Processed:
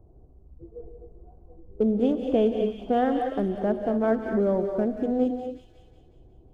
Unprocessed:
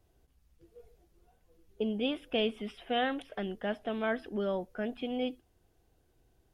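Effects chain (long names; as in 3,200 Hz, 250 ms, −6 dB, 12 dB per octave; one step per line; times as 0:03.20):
adaptive Wiener filter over 25 samples
high-shelf EQ 2,000 Hz −8.5 dB
on a send: delay with a high-pass on its return 182 ms, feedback 54%, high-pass 2,700 Hz, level −5 dB
on the sum: time-frequency box erased 0:05.26–0:05.54, 500–2,300 Hz
in parallel at +1.5 dB: downward compressor, threshold −47 dBFS, peak gain reduction 18.5 dB
on the sum: parametric band 2,800 Hz −15 dB 1.7 octaves
notch filter 3,900 Hz, Q 21
reverb whose tail is shaped and stops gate 280 ms rising, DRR 5.5 dB
level +9 dB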